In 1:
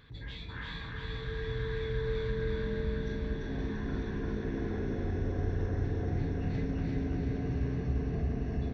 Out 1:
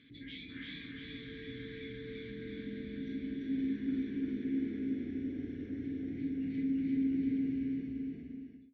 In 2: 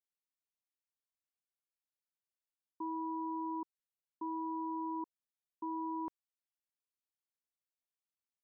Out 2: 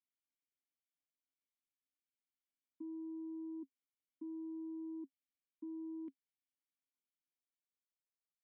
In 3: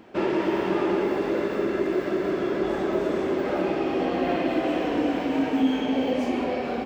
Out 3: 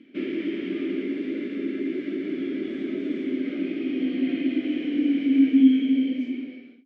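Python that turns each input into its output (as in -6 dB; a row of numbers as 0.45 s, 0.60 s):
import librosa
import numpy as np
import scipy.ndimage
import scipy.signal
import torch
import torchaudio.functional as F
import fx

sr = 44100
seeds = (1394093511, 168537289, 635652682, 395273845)

y = fx.fade_out_tail(x, sr, length_s=1.42)
y = fx.rider(y, sr, range_db=3, speed_s=2.0)
y = fx.vowel_filter(y, sr, vowel='i')
y = y * librosa.db_to_amplitude(8.0)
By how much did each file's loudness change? -3.0 LU, -6.5 LU, 0.0 LU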